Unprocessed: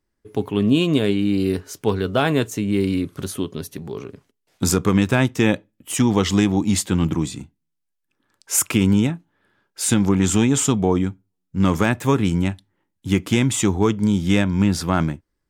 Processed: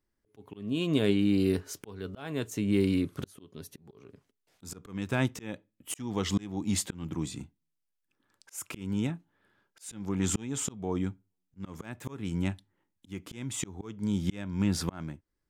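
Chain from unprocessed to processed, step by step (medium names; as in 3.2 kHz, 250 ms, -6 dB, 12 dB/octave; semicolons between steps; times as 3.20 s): slow attack 560 ms; trim -5.5 dB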